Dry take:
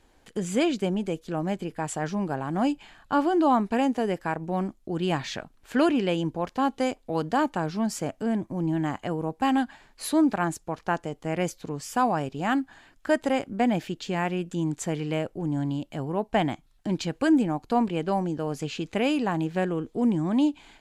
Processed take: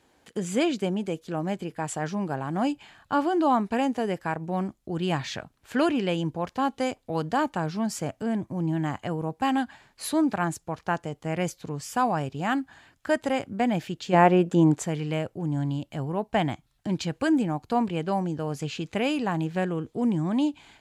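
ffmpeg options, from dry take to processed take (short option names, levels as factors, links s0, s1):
-filter_complex "[0:a]asplit=3[s0][s1][s2];[s0]afade=t=out:st=14.12:d=0.02[s3];[s1]equalizer=f=540:w=0.41:g=14,afade=t=in:st=14.12:d=0.02,afade=t=out:st=14.81:d=0.02[s4];[s2]afade=t=in:st=14.81:d=0.02[s5];[s3][s4][s5]amix=inputs=3:normalize=0,asubboost=boost=3:cutoff=130,highpass=100"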